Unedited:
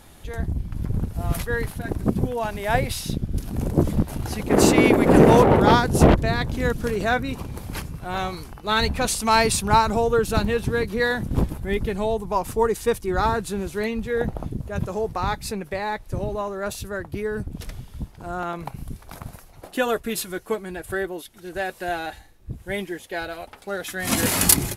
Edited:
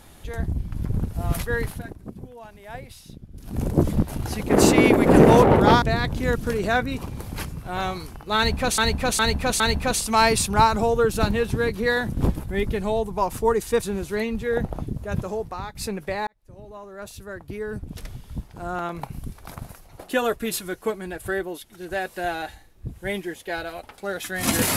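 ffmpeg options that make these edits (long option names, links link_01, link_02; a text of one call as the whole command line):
ffmpeg -i in.wav -filter_complex "[0:a]asplit=10[link_01][link_02][link_03][link_04][link_05][link_06][link_07][link_08][link_09][link_10];[link_01]atrim=end=1.94,asetpts=PTS-STARTPTS,afade=type=out:start_time=1.73:duration=0.21:silence=0.158489[link_11];[link_02]atrim=start=1.94:end=3.38,asetpts=PTS-STARTPTS,volume=-16dB[link_12];[link_03]atrim=start=3.38:end=5.822,asetpts=PTS-STARTPTS,afade=type=in:duration=0.21:silence=0.158489[link_13];[link_04]atrim=start=6.188:end=9.152[link_14];[link_05]atrim=start=8.738:end=9.152[link_15];[link_06]atrim=start=8.738:end=9.152[link_16];[link_07]atrim=start=8.738:end=12.962[link_17];[link_08]atrim=start=13.458:end=15.39,asetpts=PTS-STARTPTS,afade=type=out:start_time=1.362:duration=0.57:silence=0.199526[link_18];[link_09]atrim=start=15.39:end=15.91,asetpts=PTS-STARTPTS,afade=type=in:duration=0.004:curve=hsin:silence=0.199526,afade=type=out:start_time=0.516:duration=0.004:curve=hsin[link_19];[link_10]atrim=start=15.91,asetpts=PTS-STARTPTS,afade=type=in:duration=2.12[link_20];[link_11][link_12][link_13]concat=n=3:v=0:a=1[link_21];[link_21][link_14]acrossfade=duration=0.004:curve1=hsin:curve2=hsin[link_22];[link_22][link_15]acrossfade=duration=0.004:curve1=hsin:curve2=hsin[link_23];[link_23][link_16]acrossfade=duration=0.004:curve1=hsin:curve2=hsin[link_24];[link_24][link_17]acrossfade=duration=0.004:curve1=hsin:curve2=hsin[link_25];[link_18][link_19][link_20]concat=n=3:v=0:a=1[link_26];[link_25][link_26]acrossfade=duration=0.004:curve1=hsin:curve2=hsin" out.wav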